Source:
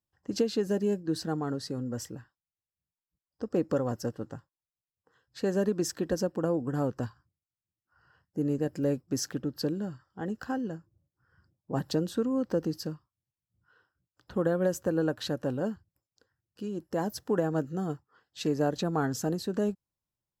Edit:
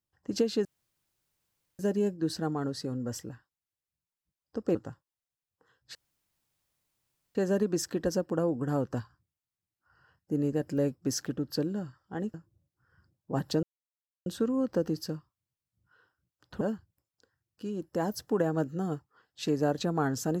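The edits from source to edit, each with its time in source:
0:00.65: splice in room tone 1.14 s
0:03.61–0:04.21: remove
0:05.41: splice in room tone 1.40 s
0:10.40–0:10.74: remove
0:12.03: splice in silence 0.63 s
0:14.38–0:15.59: remove

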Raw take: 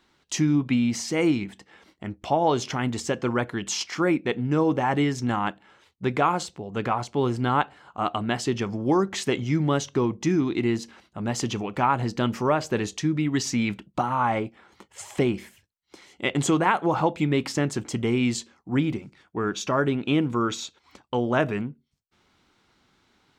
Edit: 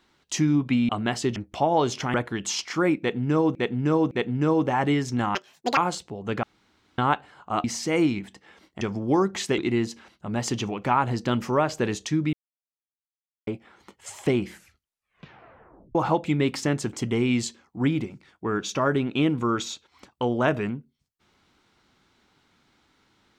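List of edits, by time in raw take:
0:00.89–0:02.06: swap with 0:08.12–0:08.59
0:02.84–0:03.36: remove
0:04.21–0:04.77: repeat, 3 plays
0:05.45–0:06.25: play speed 190%
0:06.91–0:07.46: fill with room tone
0:09.36–0:10.50: remove
0:13.25–0:14.39: silence
0:15.35: tape stop 1.52 s

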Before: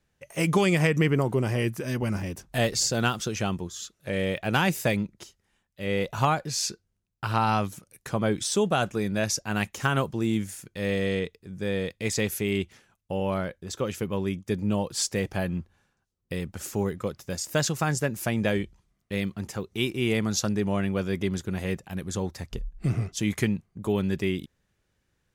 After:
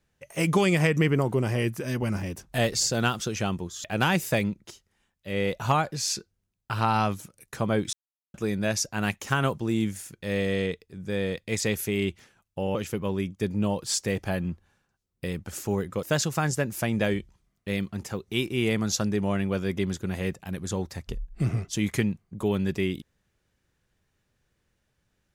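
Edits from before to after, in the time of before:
0:03.84–0:04.37: remove
0:08.46–0:08.87: silence
0:13.28–0:13.83: remove
0:17.11–0:17.47: remove

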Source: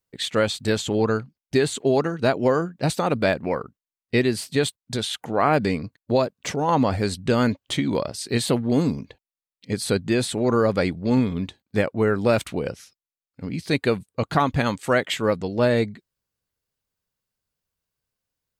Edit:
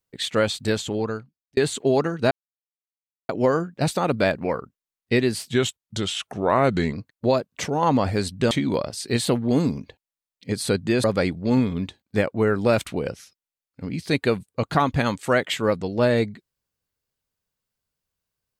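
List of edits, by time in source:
0:00.63–0:01.57: fade out
0:02.31: splice in silence 0.98 s
0:04.50–0:05.79: play speed 89%
0:07.37–0:07.72: remove
0:10.25–0:10.64: remove

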